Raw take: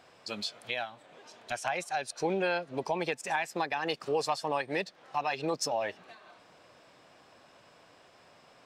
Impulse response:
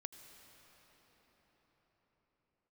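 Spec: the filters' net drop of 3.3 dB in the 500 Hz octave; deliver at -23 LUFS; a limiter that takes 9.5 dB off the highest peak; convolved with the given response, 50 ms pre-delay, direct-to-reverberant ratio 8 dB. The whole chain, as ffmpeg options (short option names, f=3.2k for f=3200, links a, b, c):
-filter_complex "[0:a]equalizer=f=500:t=o:g=-4,alimiter=level_in=3dB:limit=-24dB:level=0:latency=1,volume=-3dB,asplit=2[a][b];[1:a]atrim=start_sample=2205,adelay=50[c];[b][c]afir=irnorm=-1:irlink=0,volume=-3.5dB[d];[a][d]amix=inputs=2:normalize=0,volume=15dB"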